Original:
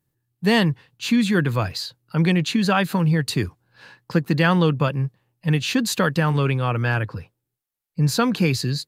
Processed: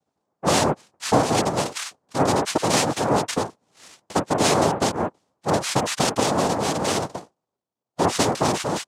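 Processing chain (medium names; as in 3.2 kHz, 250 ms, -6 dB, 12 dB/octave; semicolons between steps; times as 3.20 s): 2.57–3.18 s: phase dispersion lows, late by 62 ms, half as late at 630 Hz; 6.97–8.05 s: sample-rate reducer 1.1 kHz, jitter 0%; noise-vocoded speech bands 2; trim -1.5 dB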